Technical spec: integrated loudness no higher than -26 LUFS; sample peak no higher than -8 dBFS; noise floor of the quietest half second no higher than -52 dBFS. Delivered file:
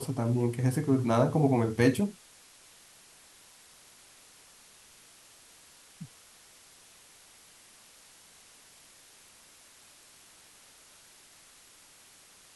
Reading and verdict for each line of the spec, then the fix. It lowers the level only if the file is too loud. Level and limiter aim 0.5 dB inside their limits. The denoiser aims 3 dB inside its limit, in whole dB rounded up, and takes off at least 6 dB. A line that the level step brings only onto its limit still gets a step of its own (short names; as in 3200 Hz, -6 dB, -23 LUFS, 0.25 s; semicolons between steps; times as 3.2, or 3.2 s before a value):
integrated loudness -27.0 LUFS: OK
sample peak -11.0 dBFS: OK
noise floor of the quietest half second -57 dBFS: OK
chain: none